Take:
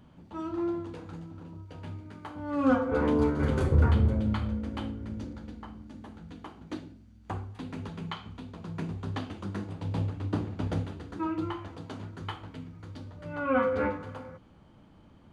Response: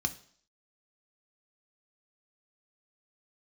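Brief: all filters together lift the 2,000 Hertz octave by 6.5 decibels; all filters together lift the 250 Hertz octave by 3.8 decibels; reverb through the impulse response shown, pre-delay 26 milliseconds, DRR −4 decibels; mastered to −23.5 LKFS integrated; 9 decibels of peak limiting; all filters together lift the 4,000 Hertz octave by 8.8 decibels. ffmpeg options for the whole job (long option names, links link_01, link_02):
-filter_complex "[0:a]equalizer=frequency=250:width_type=o:gain=4.5,equalizer=frequency=2000:width_type=o:gain=8,equalizer=frequency=4000:width_type=o:gain=8.5,alimiter=limit=-18dB:level=0:latency=1,asplit=2[link_01][link_02];[1:a]atrim=start_sample=2205,adelay=26[link_03];[link_02][link_03]afir=irnorm=-1:irlink=0,volume=0dB[link_04];[link_01][link_04]amix=inputs=2:normalize=0,volume=-1dB"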